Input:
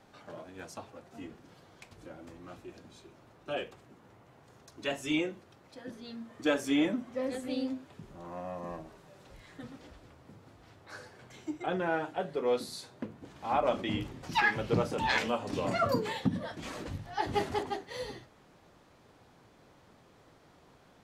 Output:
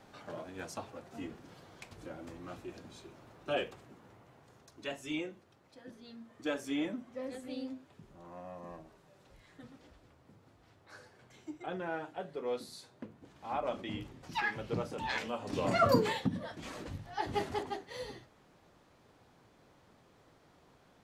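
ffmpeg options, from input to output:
ffmpeg -i in.wav -af "volume=13dB,afade=type=out:start_time=3.64:duration=1.33:silence=0.354813,afade=type=in:start_time=15.32:duration=0.69:silence=0.281838,afade=type=out:start_time=16.01:duration=0.26:silence=0.421697" out.wav

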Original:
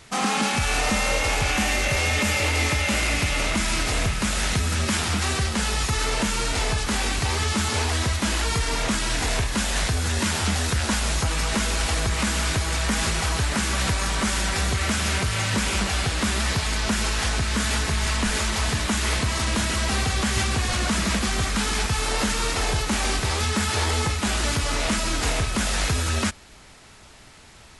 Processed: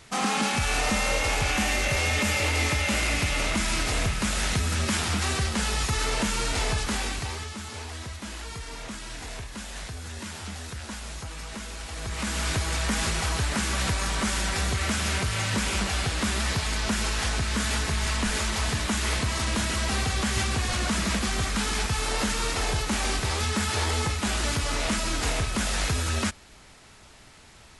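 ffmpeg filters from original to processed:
ffmpeg -i in.wav -af "volume=8dB,afade=type=out:start_time=6.79:duration=0.72:silence=0.281838,afade=type=in:start_time=11.91:duration=0.62:silence=0.298538" out.wav

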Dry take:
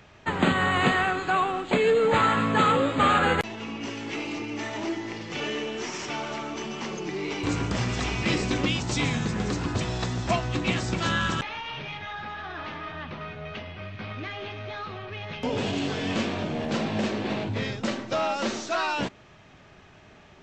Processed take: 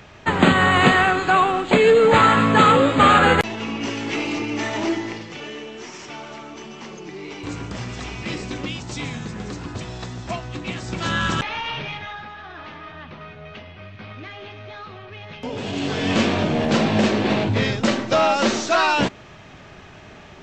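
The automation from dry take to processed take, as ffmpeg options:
ffmpeg -i in.wav -af "volume=29.5dB,afade=type=out:start_time=4.94:duration=0.44:silence=0.281838,afade=type=in:start_time=10.8:duration=0.86:silence=0.266073,afade=type=out:start_time=11.66:duration=0.64:silence=0.334965,afade=type=in:start_time=15.62:duration=0.64:silence=0.298538" out.wav

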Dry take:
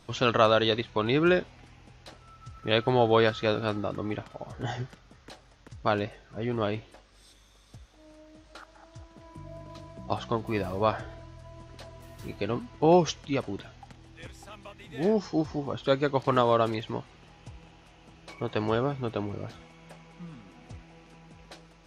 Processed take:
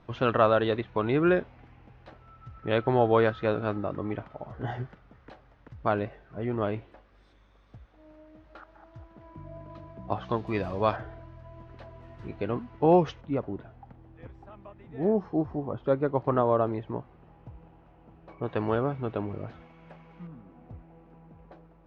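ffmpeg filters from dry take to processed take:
ffmpeg -i in.wav -af "asetnsamples=nb_out_samples=441:pad=0,asendcmd='10.24 lowpass f 4000;10.96 lowpass f 2000;13.21 lowpass f 1100;18.43 lowpass f 2000;20.27 lowpass f 1000',lowpass=1900" out.wav

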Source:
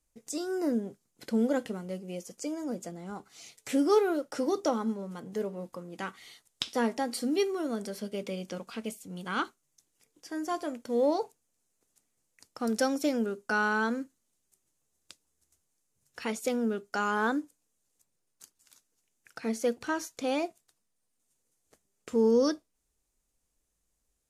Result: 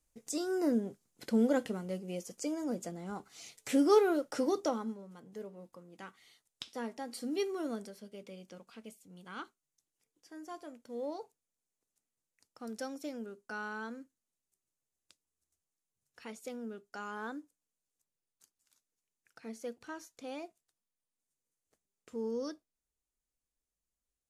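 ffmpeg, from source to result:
ffmpeg -i in.wav -af "volume=6.5dB,afade=type=out:start_time=4.38:duration=0.65:silence=0.298538,afade=type=in:start_time=6.97:duration=0.71:silence=0.421697,afade=type=out:start_time=7.68:duration=0.26:silence=0.354813" out.wav

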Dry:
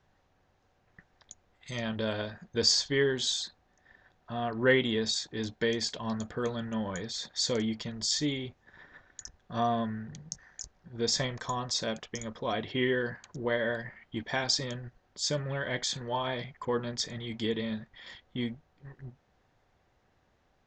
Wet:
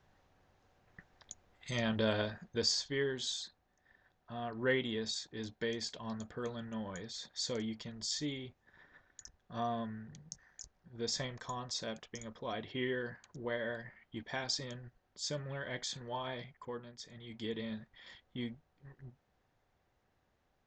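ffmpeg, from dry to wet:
ffmpeg -i in.wav -af "volume=11.5dB,afade=type=out:start_time=2.24:duration=0.46:silence=0.398107,afade=type=out:start_time=16.39:duration=0.56:silence=0.298538,afade=type=in:start_time=16.95:duration=0.69:silence=0.266073" out.wav

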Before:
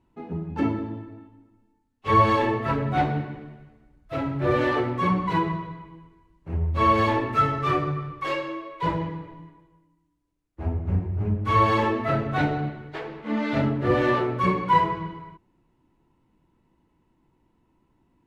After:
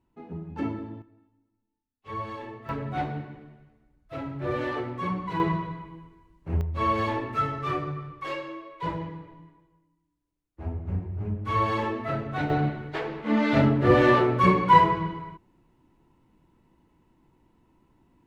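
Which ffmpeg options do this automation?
ffmpeg -i in.wav -af "asetnsamples=nb_out_samples=441:pad=0,asendcmd='1.02 volume volume -16.5dB;2.69 volume volume -7dB;5.4 volume volume 1.5dB;6.61 volume volume -5.5dB;12.5 volume volume 3dB',volume=-6dB" out.wav

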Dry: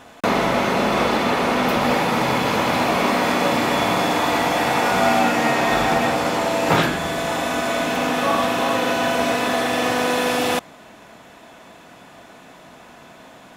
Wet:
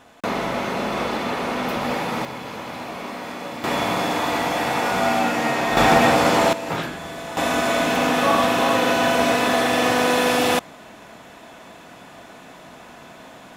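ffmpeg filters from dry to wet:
ffmpeg -i in.wav -af "asetnsamples=nb_out_samples=441:pad=0,asendcmd='2.25 volume volume -13dB;3.64 volume volume -3dB;5.77 volume volume 4dB;6.53 volume volume -9dB;7.37 volume volume 1.5dB',volume=-5.5dB" out.wav

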